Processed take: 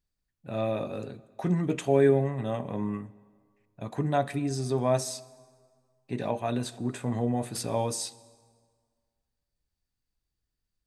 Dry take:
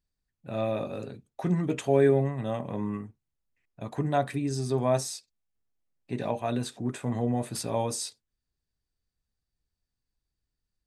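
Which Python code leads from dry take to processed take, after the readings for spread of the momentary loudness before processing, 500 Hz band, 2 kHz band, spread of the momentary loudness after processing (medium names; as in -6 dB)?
14 LU, 0.0 dB, 0.0 dB, 14 LU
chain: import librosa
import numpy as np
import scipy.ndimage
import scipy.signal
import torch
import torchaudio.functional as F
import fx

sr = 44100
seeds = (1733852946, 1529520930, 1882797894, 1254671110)

y = fx.rev_plate(x, sr, seeds[0], rt60_s=1.8, hf_ratio=0.75, predelay_ms=0, drr_db=18.0)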